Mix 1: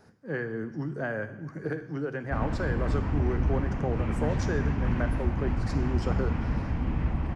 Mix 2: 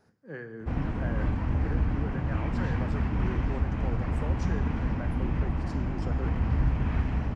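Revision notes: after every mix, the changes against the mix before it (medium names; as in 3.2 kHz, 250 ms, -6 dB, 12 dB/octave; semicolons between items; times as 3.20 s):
speech -8.0 dB; background: entry -1.65 s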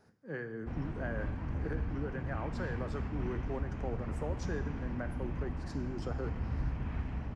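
background -9.5 dB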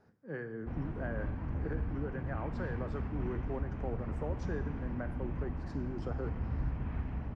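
master: add low-pass 2 kHz 6 dB/octave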